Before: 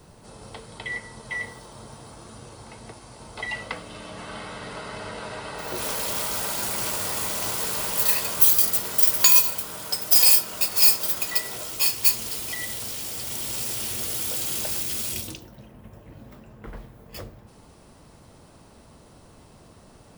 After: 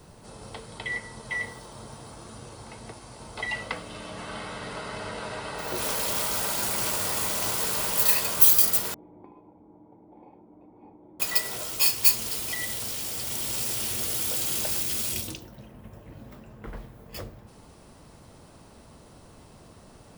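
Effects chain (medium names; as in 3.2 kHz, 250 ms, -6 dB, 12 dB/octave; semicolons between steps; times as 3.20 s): 8.94–11.20 s: cascade formant filter u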